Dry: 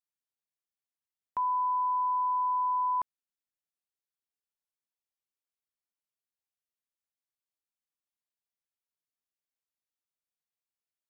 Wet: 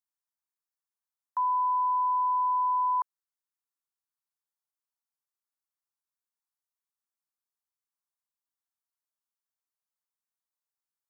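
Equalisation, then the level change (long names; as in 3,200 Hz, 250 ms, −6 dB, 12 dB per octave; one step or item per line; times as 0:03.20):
inverse Chebyshev high-pass filter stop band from 330 Hz
parametric band 1,000 Hz +2.5 dB
phaser with its sweep stopped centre 1,100 Hz, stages 4
0.0 dB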